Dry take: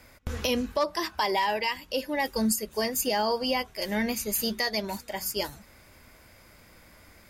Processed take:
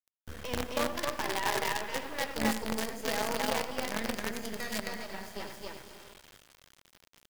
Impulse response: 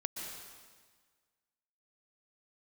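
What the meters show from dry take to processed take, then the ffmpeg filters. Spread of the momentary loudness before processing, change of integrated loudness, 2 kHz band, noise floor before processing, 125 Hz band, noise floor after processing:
6 LU, -5.5 dB, -2.5 dB, -55 dBFS, -3.5 dB, -72 dBFS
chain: -filter_complex "[0:a]equalizer=f=1700:t=o:w=0.31:g=7,aeval=exprs='val(0)+0.00178*sin(2*PI*3200*n/s)':c=same,aemphasis=mode=reproduction:type=75fm,aecho=1:1:72.89|265.3:0.282|0.891,asplit=2[s0][s1];[1:a]atrim=start_sample=2205,adelay=95[s2];[s1][s2]afir=irnorm=-1:irlink=0,volume=0.501[s3];[s0][s3]amix=inputs=2:normalize=0,acrusher=bits=4:dc=4:mix=0:aa=0.000001,volume=0.422"

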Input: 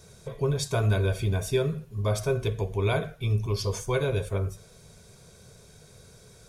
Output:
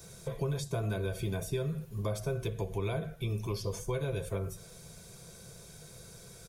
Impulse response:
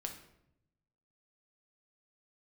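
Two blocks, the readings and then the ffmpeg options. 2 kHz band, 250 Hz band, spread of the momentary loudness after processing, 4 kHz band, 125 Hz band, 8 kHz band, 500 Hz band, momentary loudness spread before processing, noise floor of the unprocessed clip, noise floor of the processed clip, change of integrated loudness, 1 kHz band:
-9.0 dB, -5.0 dB, 15 LU, -8.5 dB, -7.5 dB, -6.0 dB, -7.5 dB, 6 LU, -53 dBFS, -52 dBFS, -7.5 dB, -8.0 dB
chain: -filter_complex "[0:a]highshelf=f=11000:g=11.5,aecho=1:1:5.9:0.34,acrossover=split=180|640[s0][s1][s2];[s0]acompressor=threshold=0.0158:ratio=4[s3];[s1]acompressor=threshold=0.0158:ratio=4[s4];[s2]acompressor=threshold=0.00631:ratio=4[s5];[s3][s4][s5]amix=inputs=3:normalize=0"

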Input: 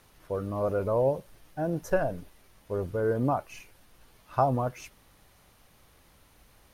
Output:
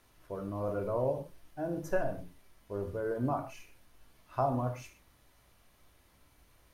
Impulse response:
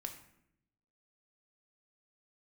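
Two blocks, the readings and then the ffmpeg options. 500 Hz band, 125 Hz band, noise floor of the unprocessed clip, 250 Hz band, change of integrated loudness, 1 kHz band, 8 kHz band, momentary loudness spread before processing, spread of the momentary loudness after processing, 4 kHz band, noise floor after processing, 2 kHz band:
-6.0 dB, -5.5 dB, -61 dBFS, -4.5 dB, -6.0 dB, -5.5 dB, -6.0 dB, 18 LU, 15 LU, no reading, -65 dBFS, -5.0 dB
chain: -filter_complex "[1:a]atrim=start_sample=2205,atrim=end_sample=6615[s0];[0:a][s0]afir=irnorm=-1:irlink=0,volume=0.708"

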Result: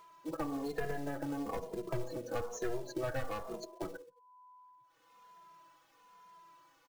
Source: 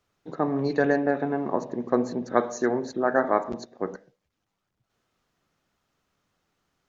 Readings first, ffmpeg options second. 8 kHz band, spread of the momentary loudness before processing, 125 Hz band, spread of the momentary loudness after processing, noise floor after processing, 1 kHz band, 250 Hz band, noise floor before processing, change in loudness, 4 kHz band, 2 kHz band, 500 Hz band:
no reading, 12 LU, -7.5 dB, 21 LU, -68 dBFS, -14.0 dB, -13.5 dB, -81 dBFS, -13.5 dB, -5.5 dB, -14.0 dB, -13.5 dB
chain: -filter_complex "[0:a]aecho=1:1:169|338:0.0708|0.0205,crystalizer=i=1:c=0,aecho=1:1:6.1:0.75,afftdn=nr=33:nf=-39,bass=f=250:g=-14,treble=f=4000:g=-7,aeval=exprs='(tanh(8.91*val(0)+0.3)-tanh(0.3))/8.91':c=same,adynamicequalizer=threshold=0.00562:dfrequency=870:dqfactor=3.6:tfrequency=870:tqfactor=3.6:attack=5:release=100:ratio=0.375:range=3:mode=cutabove:tftype=bell,acrusher=bits=4:mode=log:mix=0:aa=0.000001,acompressor=mode=upward:threshold=0.00794:ratio=2.5,aeval=exprs='val(0)+0.000891*sin(2*PI*1000*n/s)':c=same,acrossover=split=130[s0][s1];[s1]acompressor=threshold=0.0112:ratio=6[s2];[s0][s2]amix=inputs=2:normalize=0,asplit=2[s3][s4];[s4]adelay=2.5,afreqshift=-1.1[s5];[s3][s5]amix=inputs=2:normalize=1,volume=1.88"

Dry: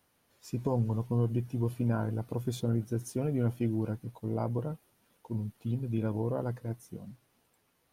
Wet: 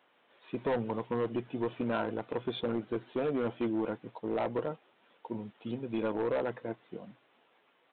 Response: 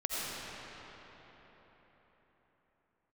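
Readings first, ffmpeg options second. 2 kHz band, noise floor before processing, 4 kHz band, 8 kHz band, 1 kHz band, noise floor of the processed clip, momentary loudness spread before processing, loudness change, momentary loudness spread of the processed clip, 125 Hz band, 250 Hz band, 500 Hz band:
+8.0 dB, -73 dBFS, +5.5 dB, under -30 dB, +4.5 dB, -69 dBFS, 10 LU, -1.5 dB, 10 LU, -14.0 dB, -1.5 dB, +3.5 dB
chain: -af "highpass=380,aresample=8000,asoftclip=type=hard:threshold=0.0211,aresample=44100,volume=2.37"

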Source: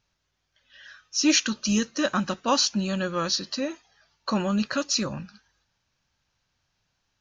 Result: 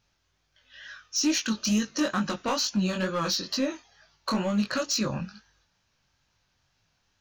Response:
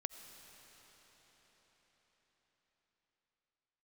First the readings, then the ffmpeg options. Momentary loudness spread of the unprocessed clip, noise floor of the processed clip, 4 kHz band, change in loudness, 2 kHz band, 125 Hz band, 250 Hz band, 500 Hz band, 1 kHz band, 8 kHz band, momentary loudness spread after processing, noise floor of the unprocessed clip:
10 LU, -73 dBFS, -3.0 dB, -2.5 dB, -2.5 dB, 0.0 dB, -1.0 dB, -2.0 dB, -2.5 dB, -3.0 dB, 14 LU, -77 dBFS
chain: -af "acompressor=threshold=0.0562:ratio=16,asoftclip=type=hard:threshold=0.0631,flanger=delay=18.5:depth=4.8:speed=2.2,volume=2"

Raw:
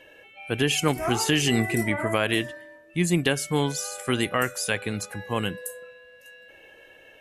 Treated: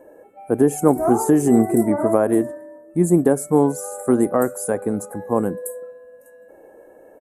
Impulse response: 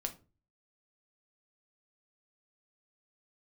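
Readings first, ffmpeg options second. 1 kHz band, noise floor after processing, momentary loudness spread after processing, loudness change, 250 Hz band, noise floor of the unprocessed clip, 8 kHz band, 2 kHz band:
+5.5 dB, -48 dBFS, 12 LU, +6.0 dB, +9.5 dB, -52 dBFS, +0.5 dB, -10.0 dB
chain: -af "firequalizer=gain_entry='entry(110,0);entry(240,12);entry(770,10);entry(2900,-29);entry(8100,5)':delay=0.05:min_phase=1,volume=0.841"

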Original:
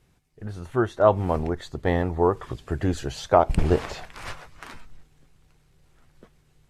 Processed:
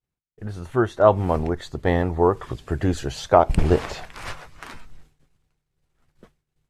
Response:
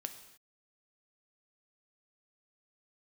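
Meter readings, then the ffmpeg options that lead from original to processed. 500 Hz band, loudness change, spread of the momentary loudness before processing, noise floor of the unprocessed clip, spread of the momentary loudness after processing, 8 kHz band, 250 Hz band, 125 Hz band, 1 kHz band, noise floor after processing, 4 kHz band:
+2.5 dB, +2.5 dB, 19 LU, -63 dBFS, 19 LU, +2.5 dB, +2.5 dB, +2.5 dB, +2.5 dB, -83 dBFS, +2.5 dB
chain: -af "agate=range=0.0224:threshold=0.00447:ratio=3:detection=peak,volume=1.33"

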